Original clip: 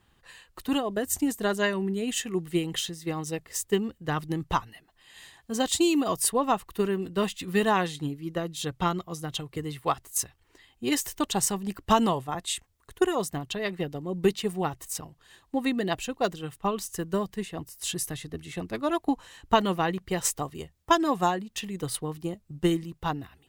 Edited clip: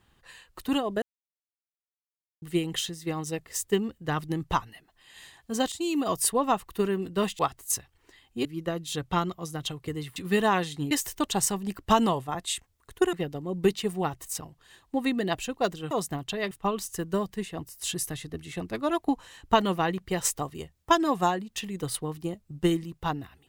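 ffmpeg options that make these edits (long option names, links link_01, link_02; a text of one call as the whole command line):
ffmpeg -i in.wav -filter_complex "[0:a]asplit=11[link_01][link_02][link_03][link_04][link_05][link_06][link_07][link_08][link_09][link_10][link_11];[link_01]atrim=end=1.02,asetpts=PTS-STARTPTS,afade=type=out:start_time=1.016:duration=0.004:curve=hsin[link_12];[link_02]atrim=start=1.02:end=2.42,asetpts=PTS-STARTPTS,volume=0[link_13];[link_03]atrim=start=2.42:end=5.72,asetpts=PTS-STARTPTS,afade=type=in:duration=0.004:curve=hsin,afade=type=out:start_time=3.296:duration=0.004:curve=hsin:silence=0.158489[link_14];[link_04]atrim=start=5.72:end=7.392,asetpts=PTS-STARTPTS,afade=type=in:duration=0.37:silence=0.158489[link_15];[link_05]atrim=start=9.848:end=10.912[link_16];[link_06]atrim=start=8.138:end=9.852[link_17];[link_07]atrim=start=7.388:end=8.142[link_18];[link_08]atrim=start=10.908:end=13.132[link_19];[link_09]atrim=start=13.728:end=16.512[link_20];[link_10]atrim=start=13.128:end=13.732[link_21];[link_11]atrim=start=16.508[link_22];[link_12][link_13][link_14][link_15]concat=n=4:v=0:a=1[link_23];[link_23][link_16]acrossfade=duration=0.004:curve1=hsin:curve2=hsin[link_24];[link_24][link_17]acrossfade=duration=0.004:curve1=hsin:curve2=hsin[link_25];[link_25][link_18]acrossfade=duration=0.004:curve1=hsin:curve2=hsin[link_26];[link_26][link_19]acrossfade=duration=0.004:curve1=hsin:curve2=hsin[link_27];[link_27][link_20]acrossfade=duration=0.004:curve1=hsin:curve2=hsin[link_28];[link_28][link_21]acrossfade=duration=0.004:curve1=hsin:curve2=hsin[link_29];[link_29][link_22]acrossfade=duration=0.004:curve1=hsin:curve2=hsin" out.wav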